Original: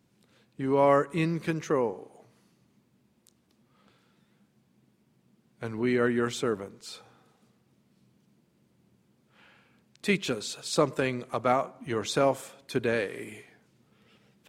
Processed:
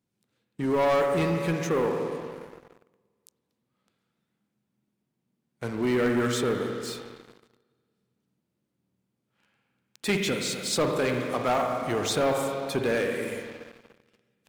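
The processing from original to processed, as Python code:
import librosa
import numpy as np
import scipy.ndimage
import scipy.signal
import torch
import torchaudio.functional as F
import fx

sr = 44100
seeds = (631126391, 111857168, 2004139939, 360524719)

y = fx.rev_spring(x, sr, rt60_s=2.3, pass_ms=(48, 58), chirp_ms=40, drr_db=5.0)
y = fx.leveller(y, sr, passes=3)
y = fx.high_shelf(y, sr, hz=8100.0, db=4.5)
y = y * librosa.db_to_amplitude(-8.0)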